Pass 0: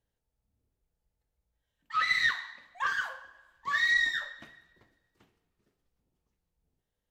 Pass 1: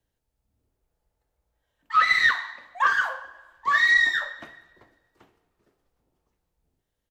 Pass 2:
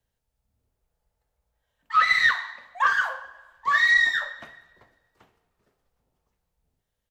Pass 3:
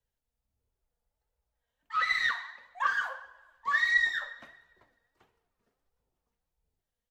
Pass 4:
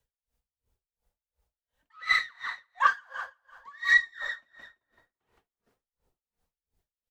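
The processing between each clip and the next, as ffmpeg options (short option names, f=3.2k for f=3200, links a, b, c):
-filter_complex "[0:a]acrossover=split=240|380|1500[a][b][c][d];[b]aecho=1:1:3.1:0.65[e];[c]dynaudnorm=f=110:g=13:m=8dB[f];[a][e][f][d]amix=inputs=4:normalize=0,volume=4dB"
-af "equalizer=f=320:t=o:w=0.51:g=-8.5"
-af "flanger=delay=2:depth=2.3:regen=49:speed=1.5:shape=sinusoidal,volume=-3.5dB"
-filter_complex "[0:a]asplit=2[a][b];[b]aecho=0:1:168|336|504|672:0.282|0.118|0.0497|0.0209[c];[a][c]amix=inputs=2:normalize=0,aeval=exprs='val(0)*pow(10,-32*(0.5-0.5*cos(2*PI*2.8*n/s))/20)':c=same,volume=7dB"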